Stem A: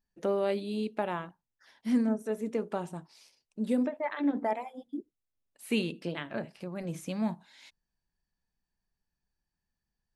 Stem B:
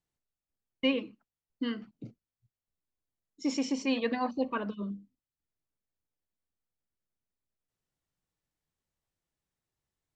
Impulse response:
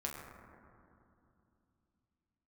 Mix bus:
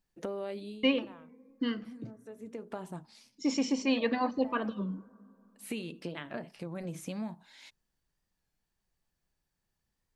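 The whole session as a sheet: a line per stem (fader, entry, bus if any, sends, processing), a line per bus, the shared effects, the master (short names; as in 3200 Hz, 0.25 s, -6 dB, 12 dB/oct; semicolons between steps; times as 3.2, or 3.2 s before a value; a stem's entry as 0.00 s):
+1.0 dB, 0.00 s, no send, compressor 5:1, threshold -36 dBFS, peak gain reduction 12.5 dB; auto duck -12 dB, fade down 0.20 s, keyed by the second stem
+0.5 dB, 0.00 s, send -20 dB, dry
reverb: on, RT60 2.7 s, pre-delay 7 ms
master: record warp 33 1/3 rpm, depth 100 cents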